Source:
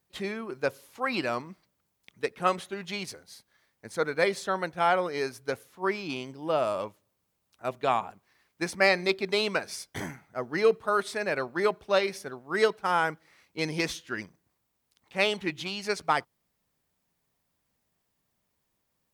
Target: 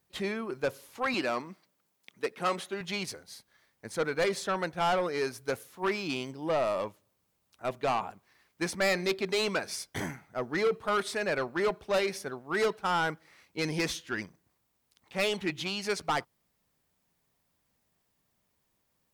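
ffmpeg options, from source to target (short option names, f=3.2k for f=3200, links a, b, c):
-filter_complex "[0:a]asoftclip=type=tanh:threshold=-24dB,asettb=1/sr,asplit=3[a][b][c];[a]atrim=end=1.144[d];[b]atrim=start=1.14:end=2.81,asetpts=PTS-STARTPTS,afade=t=in:d=0.004:c=qsin,afade=t=out:st=1.666:d=0.004:c=qsin,highpass=190[e];[c]atrim=start=2.806[f];[d][e]acrossfade=d=0.004:c1=hsin:c2=qsin[g];[g][f]acrossfade=d=0.004:c1=qsin:c2=hsin,asettb=1/sr,asplit=3[h][i][j];[h]atrim=end=5.384[k];[i]atrim=start=5.38:end=6.31,asetpts=PTS-STARTPTS,afade=t=in:d=0.004:c=qsin,afade=t=out:st=0.926:d=0.004:c=qsin,highshelf=f=5.5k:g=5[l];[j]atrim=start=6.306[m];[k][l]acrossfade=d=0.004:c1=hsin:c2=qsin[n];[n][m]acrossfade=d=0.004:c1=qsin:c2=hsin,volume=1.5dB"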